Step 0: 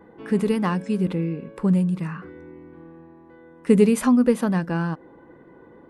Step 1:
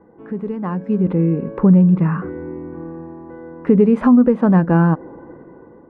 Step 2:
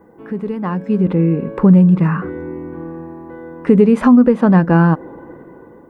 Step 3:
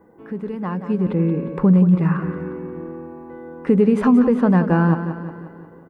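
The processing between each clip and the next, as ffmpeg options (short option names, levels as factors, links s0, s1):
-af "lowpass=1200,alimiter=limit=0.141:level=0:latency=1:release=427,dynaudnorm=f=310:g=7:m=5.01"
-af "crystalizer=i=4:c=0,volume=1.26"
-af "aecho=1:1:178|356|534|712|890|1068:0.316|0.168|0.0888|0.0471|0.025|0.0132,volume=0.562"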